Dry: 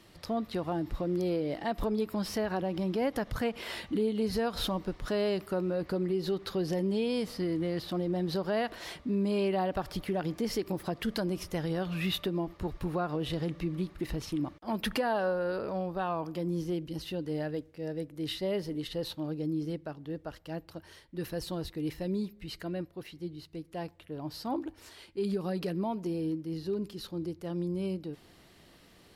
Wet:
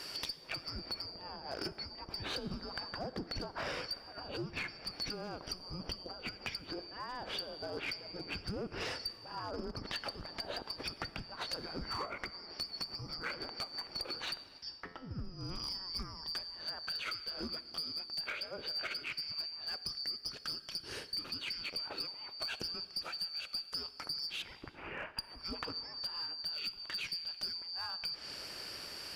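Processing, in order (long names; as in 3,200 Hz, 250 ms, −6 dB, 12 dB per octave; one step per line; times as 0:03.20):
band-splitting scrambler in four parts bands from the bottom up 2341
0:24.42–0:25.19: elliptic low-pass filter 2,600 Hz
treble cut that deepens with the level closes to 650 Hz, closed at −26.5 dBFS
downward compressor 20 to 1, threshold −48 dBFS, peak gain reduction 16.5 dB
0:14.44–0:15.11: tuned comb filter 87 Hz, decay 0.6 s, harmonics all, mix 70%
asymmetric clip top −46.5 dBFS
dense smooth reverb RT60 2.3 s, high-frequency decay 0.8×, DRR 14.5 dB
level +12.5 dB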